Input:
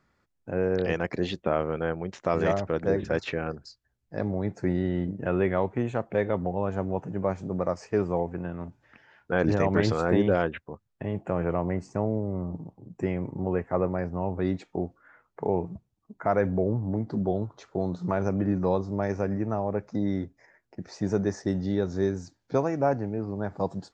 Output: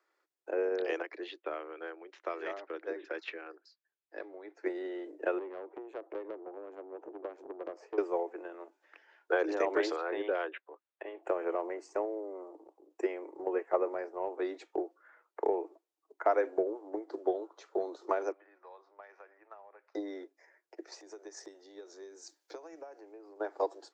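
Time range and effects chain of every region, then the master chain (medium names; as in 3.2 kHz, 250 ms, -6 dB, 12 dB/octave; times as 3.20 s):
1.02–4.66 s: low-pass 3.1 kHz + peaking EQ 560 Hz -10.5 dB 2.3 oct
5.38–7.98 s: tilt EQ -4.5 dB/octave + compression 16:1, threshold -23 dBFS + valve stage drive 26 dB, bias 0.6
9.96–11.23 s: low-pass 3.8 kHz 24 dB/octave + bass shelf 390 Hz -11 dB
18.32–19.95 s: compression 2:1, threshold -35 dBFS + high-pass 1.2 kHz + distance through air 330 m
21.00–23.40 s: treble shelf 4.1 kHz +11.5 dB + compression 12:1, threshold -37 dBFS
whole clip: steep high-pass 310 Hz 96 dB/octave; transient shaper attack +7 dB, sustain +3 dB; trim -6.5 dB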